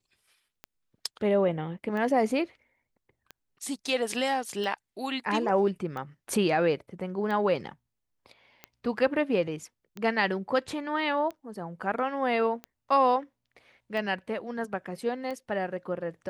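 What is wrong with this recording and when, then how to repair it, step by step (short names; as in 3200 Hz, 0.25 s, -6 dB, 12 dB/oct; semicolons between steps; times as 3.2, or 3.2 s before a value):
tick 45 rpm -24 dBFS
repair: de-click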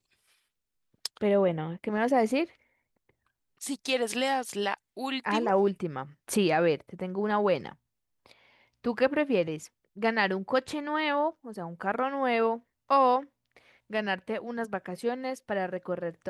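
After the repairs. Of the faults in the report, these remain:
none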